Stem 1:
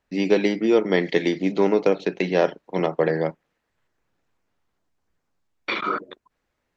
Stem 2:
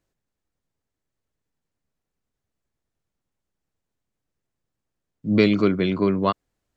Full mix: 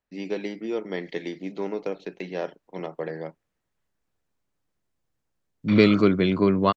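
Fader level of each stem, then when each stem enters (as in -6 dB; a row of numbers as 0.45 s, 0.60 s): -11.0 dB, +0.5 dB; 0.00 s, 0.40 s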